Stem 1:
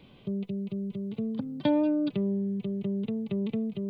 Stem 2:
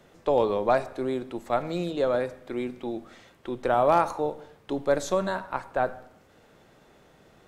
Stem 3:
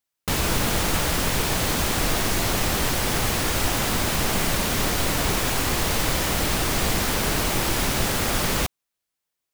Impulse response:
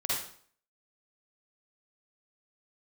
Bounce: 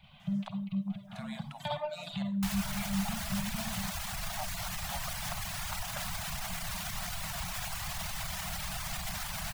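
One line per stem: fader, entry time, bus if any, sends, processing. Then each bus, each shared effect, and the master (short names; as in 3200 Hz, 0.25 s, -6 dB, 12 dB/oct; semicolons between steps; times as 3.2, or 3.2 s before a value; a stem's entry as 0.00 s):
+3.0 dB, 0.00 s, bus A, send -6 dB, flange 1.8 Hz, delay 1.1 ms, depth 5.3 ms, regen +41%
-2.0 dB, 0.20 s, bus A, send -11.5 dB, HPF 480 Hz 12 dB/oct; flipped gate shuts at -20 dBFS, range -35 dB
-6.0 dB, 2.15 s, no bus, no send, limiter -19 dBFS, peak gain reduction 9 dB
bus A: 0.0 dB, gate -56 dBFS, range -8 dB; limiter -25.5 dBFS, peak gain reduction 11 dB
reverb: on, RT60 0.55 s, pre-delay 43 ms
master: reverb removal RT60 0.68 s; elliptic band-stop 190–670 Hz, stop band 40 dB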